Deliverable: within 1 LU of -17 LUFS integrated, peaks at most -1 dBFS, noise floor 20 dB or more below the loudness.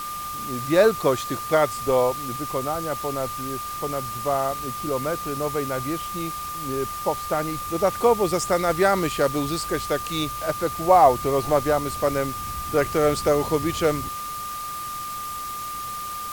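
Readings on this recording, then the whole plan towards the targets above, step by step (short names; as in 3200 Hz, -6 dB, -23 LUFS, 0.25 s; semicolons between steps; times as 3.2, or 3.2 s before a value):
steady tone 1200 Hz; tone level -30 dBFS; noise floor -32 dBFS; noise floor target -44 dBFS; loudness -24.0 LUFS; peak -3.5 dBFS; loudness target -17.0 LUFS
-> notch 1200 Hz, Q 30; denoiser 12 dB, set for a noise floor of -32 dBFS; gain +7 dB; limiter -1 dBFS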